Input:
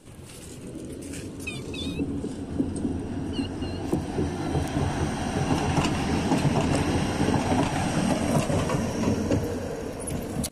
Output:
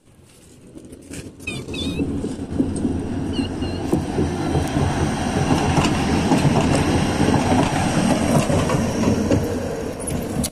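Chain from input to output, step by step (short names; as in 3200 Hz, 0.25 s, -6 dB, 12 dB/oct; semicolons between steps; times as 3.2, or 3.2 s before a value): gate -34 dBFS, range -12 dB; on a send: reverb RT60 0.25 s, pre-delay 4 ms, DRR 19 dB; on the sum: gain +6.5 dB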